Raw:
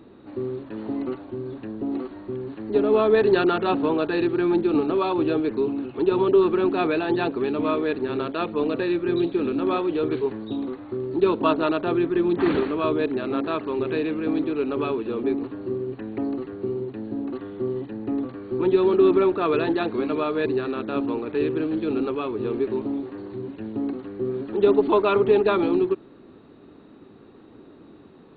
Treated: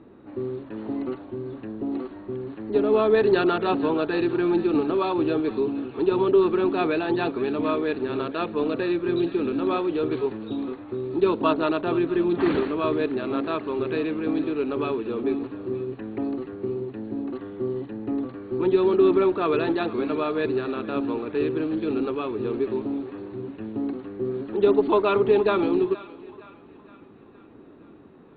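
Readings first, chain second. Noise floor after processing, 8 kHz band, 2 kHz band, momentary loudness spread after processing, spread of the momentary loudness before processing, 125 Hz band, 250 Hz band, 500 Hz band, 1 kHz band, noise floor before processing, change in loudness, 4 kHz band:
-49 dBFS, no reading, -1.0 dB, 12 LU, 12 LU, -1.0 dB, -1.0 dB, -1.0 dB, -1.0 dB, -49 dBFS, -1.0 dB, -1.0 dB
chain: thinning echo 466 ms, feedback 61%, high-pass 700 Hz, level -16 dB; level-controlled noise filter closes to 2.4 kHz, open at -18 dBFS; trim -1 dB

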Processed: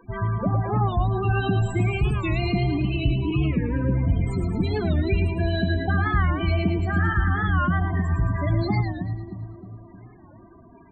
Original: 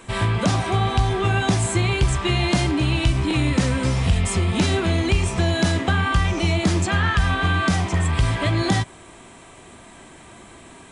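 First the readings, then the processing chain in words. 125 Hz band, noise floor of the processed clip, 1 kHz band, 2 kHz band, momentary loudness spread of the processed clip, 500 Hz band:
-1.5 dB, -49 dBFS, -3.5 dB, -5.0 dB, 5 LU, -3.5 dB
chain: tracing distortion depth 0.097 ms; loudest bins only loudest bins 16; two-band feedback delay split 430 Hz, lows 309 ms, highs 110 ms, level -6 dB; warped record 45 rpm, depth 160 cents; trim -3.5 dB

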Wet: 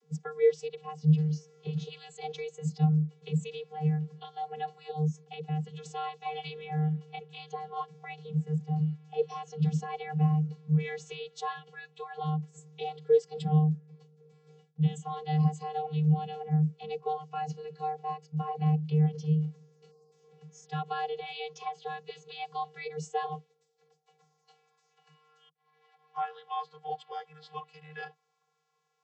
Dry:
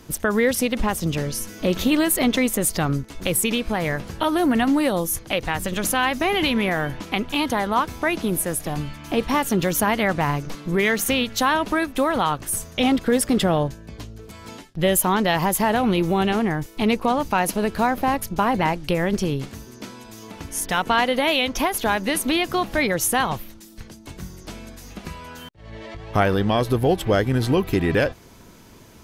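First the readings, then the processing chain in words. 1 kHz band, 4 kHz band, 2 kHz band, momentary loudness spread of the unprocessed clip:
-12.0 dB, -19.5 dB, -21.5 dB, 18 LU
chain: spectral selection erased 19.91–20.12 s, 1.2–4.3 kHz; vocoder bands 32, square 153 Hz; peaking EQ 1.3 kHz -7.5 dB 2.8 oct; spectral noise reduction 10 dB; high-pass sweep 250 Hz -> 1 kHz, 22.27–24.79 s; trim -2 dB

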